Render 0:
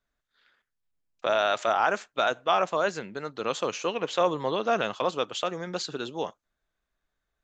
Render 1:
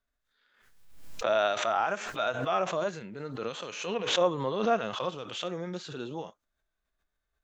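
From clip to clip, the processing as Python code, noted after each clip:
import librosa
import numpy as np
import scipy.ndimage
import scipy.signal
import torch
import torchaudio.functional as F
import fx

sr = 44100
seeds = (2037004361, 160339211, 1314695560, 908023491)

y = fx.hpss(x, sr, part='percussive', gain_db=-16)
y = fx.pre_swell(y, sr, db_per_s=57.0)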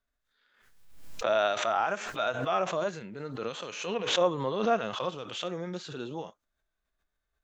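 y = x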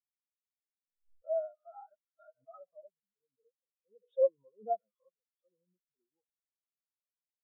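y = fx.spectral_expand(x, sr, expansion=4.0)
y = y * librosa.db_to_amplitude(-4.5)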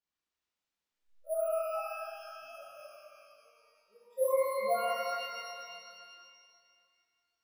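y = np.repeat(x[::4], 4)[:len(x)]
y = fx.rev_shimmer(y, sr, seeds[0], rt60_s=2.3, semitones=12, shimmer_db=-8, drr_db=-6.5)
y = y * librosa.db_to_amplitude(-3.0)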